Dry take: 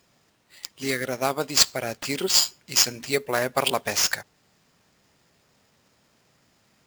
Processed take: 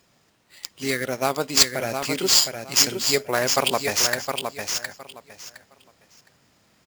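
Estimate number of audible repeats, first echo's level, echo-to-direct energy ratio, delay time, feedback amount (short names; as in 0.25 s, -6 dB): 3, -6.0 dB, -6.0 dB, 0.713 s, 20%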